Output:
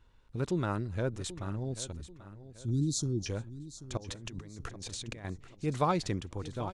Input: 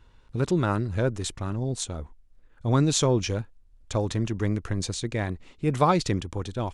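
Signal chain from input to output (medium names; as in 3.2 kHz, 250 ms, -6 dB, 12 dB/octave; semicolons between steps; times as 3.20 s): 1.92–3.26 s: Chebyshev band-stop 350–4200 Hz, order 4; 3.97–5.25 s: compressor with a negative ratio -37 dBFS, ratio -1; feedback delay 786 ms, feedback 40%, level -15 dB; trim -7.5 dB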